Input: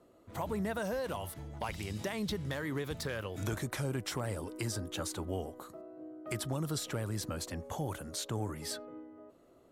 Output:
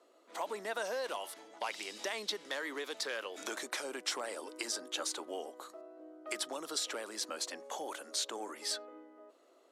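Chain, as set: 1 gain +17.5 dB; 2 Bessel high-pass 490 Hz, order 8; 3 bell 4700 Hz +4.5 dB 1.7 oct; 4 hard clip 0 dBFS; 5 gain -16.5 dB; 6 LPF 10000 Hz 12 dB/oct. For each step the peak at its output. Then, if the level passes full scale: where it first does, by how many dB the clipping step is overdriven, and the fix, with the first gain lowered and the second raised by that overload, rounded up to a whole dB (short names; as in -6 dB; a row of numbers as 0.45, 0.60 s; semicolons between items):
-7.0, -6.0, -4.0, -4.0, -20.5, -20.5 dBFS; no overload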